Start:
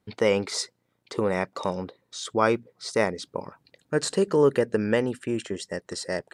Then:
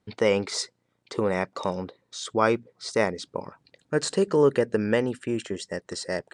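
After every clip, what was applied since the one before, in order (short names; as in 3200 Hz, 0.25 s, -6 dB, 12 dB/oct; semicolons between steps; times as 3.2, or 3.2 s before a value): LPF 9500 Hz 24 dB/oct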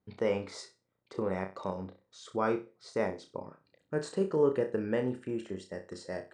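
high shelf 2000 Hz -10.5 dB; flutter echo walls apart 5.4 m, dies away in 0.28 s; gain -7.5 dB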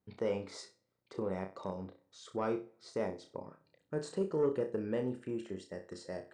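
on a send at -24 dB: reverb RT60 0.90 s, pre-delay 3 ms; on the sum: dynamic EQ 1700 Hz, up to -5 dB, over -47 dBFS, Q 1; soft clip -19 dBFS, distortion -22 dB; gain -3 dB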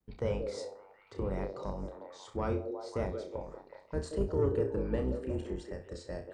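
octaver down 2 oct, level +3 dB; delay with a stepping band-pass 0.181 s, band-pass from 410 Hz, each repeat 0.7 oct, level -3.5 dB; vibrato 0.79 Hz 44 cents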